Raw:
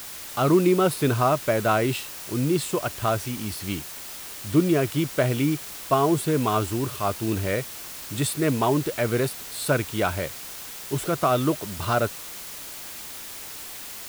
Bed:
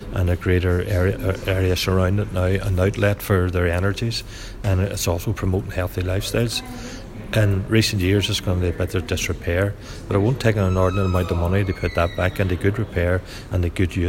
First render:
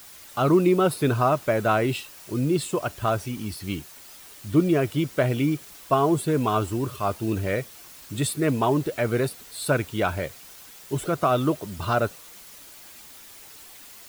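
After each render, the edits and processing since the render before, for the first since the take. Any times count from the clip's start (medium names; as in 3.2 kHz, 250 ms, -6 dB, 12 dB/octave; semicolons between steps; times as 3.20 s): noise reduction 9 dB, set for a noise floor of -38 dBFS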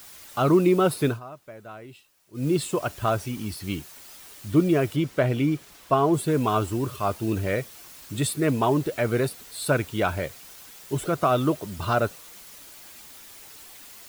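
1.05–2.48 s: dip -20 dB, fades 0.15 s; 4.96–6.14 s: treble shelf 5.7 kHz -7.5 dB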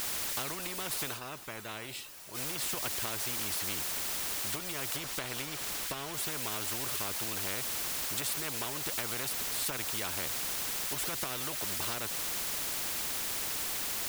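compression 10:1, threshold -26 dBFS, peak gain reduction 13.5 dB; spectrum-flattening compressor 4:1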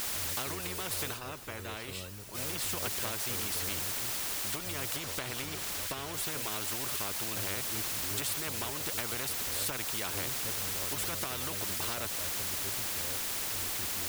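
add bed -27.5 dB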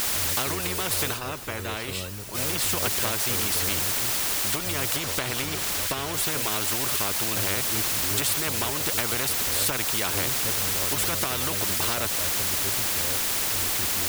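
trim +9 dB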